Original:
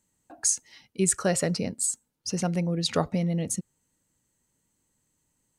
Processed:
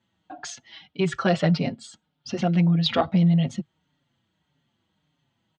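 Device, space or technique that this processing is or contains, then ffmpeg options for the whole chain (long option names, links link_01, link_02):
barber-pole flanger into a guitar amplifier: -filter_complex "[0:a]asplit=2[link_01][link_02];[link_02]adelay=5.4,afreqshift=-1.7[link_03];[link_01][link_03]amix=inputs=2:normalize=1,asoftclip=type=tanh:threshold=-18dB,highpass=80,equalizer=frequency=150:width_type=q:width=4:gain=5,equalizer=frequency=460:width_type=q:width=4:gain=-6,equalizer=frequency=720:width_type=q:width=4:gain=7,equalizer=frequency=1400:width_type=q:width=4:gain=4,equalizer=frequency=3300:width_type=q:width=4:gain=10,lowpass=frequency=4100:width=0.5412,lowpass=frequency=4100:width=1.3066,volume=7.5dB"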